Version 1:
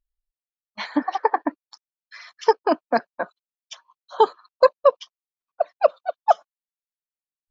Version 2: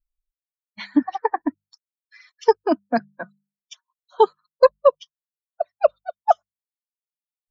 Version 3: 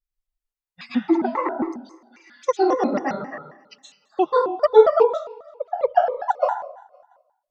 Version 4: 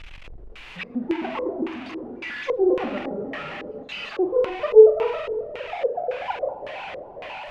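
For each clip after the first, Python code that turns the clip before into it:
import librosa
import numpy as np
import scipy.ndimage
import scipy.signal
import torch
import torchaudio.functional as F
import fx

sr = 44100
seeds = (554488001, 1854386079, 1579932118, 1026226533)

y1 = fx.bin_expand(x, sr, power=1.5)
y1 = fx.low_shelf(y1, sr, hz=400.0, db=10.5)
y1 = fx.hum_notches(y1, sr, base_hz=50, count=4)
y1 = y1 * librosa.db_to_amplitude(-1.0)
y2 = fx.echo_feedback(y1, sr, ms=172, feedback_pct=59, wet_db=-23.5)
y2 = fx.rev_plate(y2, sr, seeds[0], rt60_s=0.61, hf_ratio=0.6, predelay_ms=110, drr_db=-4.5)
y2 = fx.vibrato_shape(y2, sr, shape='square', rate_hz=3.7, depth_cents=250.0)
y2 = y2 * librosa.db_to_amplitude(-5.5)
y3 = y2 + 0.5 * 10.0 ** (-21.5 / 20.0) * np.sign(y2)
y3 = fx.room_flutter(y3, sr, wall_m=7.5, rt60_s=0.34)
y3 = fx.filter_lfo_lowpass(y3, sr, shape='square', hz=1.8, low_hz=450.0, high_hz=2600.0, q=3.2)
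y3 = y3 * librosa.db_to_amplitude(-10.5)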